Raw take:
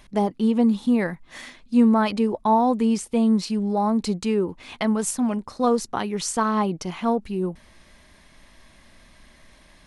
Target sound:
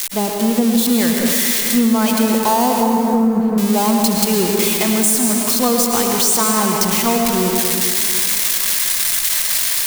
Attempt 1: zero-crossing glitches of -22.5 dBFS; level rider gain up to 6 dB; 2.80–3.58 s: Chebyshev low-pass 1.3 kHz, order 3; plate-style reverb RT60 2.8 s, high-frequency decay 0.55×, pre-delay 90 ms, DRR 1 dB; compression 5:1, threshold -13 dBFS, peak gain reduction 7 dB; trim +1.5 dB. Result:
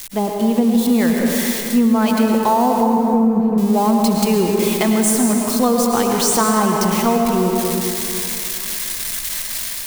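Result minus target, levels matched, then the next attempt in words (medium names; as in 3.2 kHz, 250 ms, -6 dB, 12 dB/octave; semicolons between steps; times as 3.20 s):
zero-crossing glitches: distortion -10 dB
zero-crossing glitches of -12 dBFS; level rider gain up to 6 dB; 2.80–3.58 s: Chebyshev low-pass 1.3 kHz, order 3; plate-style reverb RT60 2.8 s, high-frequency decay 0.55×, pre-delay 90 ms, DRR 1 dB; compression 5:1, threshold -13 dBFS, peak gain reduction 7 dB; trim +1.5 dB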